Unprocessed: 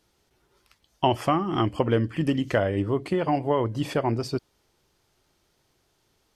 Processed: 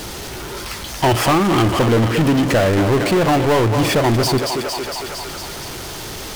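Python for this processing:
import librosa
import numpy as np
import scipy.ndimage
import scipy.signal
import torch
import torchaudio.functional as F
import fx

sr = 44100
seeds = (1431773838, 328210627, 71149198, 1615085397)

y = fx.echo_thinned(x, sr, ms=229, feedback_pct=52, hz=470.0, wet_db=-10.5)
y = fx.power_curve(y, sr, exponent=0.35)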